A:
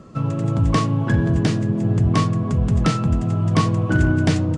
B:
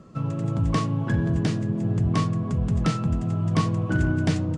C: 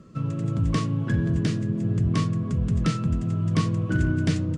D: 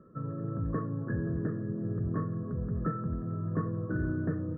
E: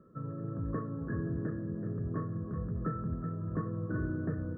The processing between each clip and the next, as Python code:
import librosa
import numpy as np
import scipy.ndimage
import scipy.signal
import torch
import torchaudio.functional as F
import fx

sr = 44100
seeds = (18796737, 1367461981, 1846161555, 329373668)

y1 = fx.peak_eq(x, sr, hz=170.0, db=3.0, octaves=0.41)
y1 = F.gain(torch.from_numpy(y1), -6.0).numpy()
y2 = fx.peak_eq(y1, sr, hz=800.0, db=-11.0, octaves=0.74)
y3 = scipy.signal.sosfilt(scipy.signal.cheby1(6, 9, 1800.0, 'lowpass', fs=sr, output='sos'), y2)
y3 = F.gain(torch.from_numpy(y3), -1.5).numpy()
y4 = y3 + 10.0 ** (-8.5 / 20.0) * np.pad(y3, (int(378 * sr / 1000.0), 0))[:len(y3)]
y4 = F.gain(torch.from_numpy(y4), -3.0).numpy()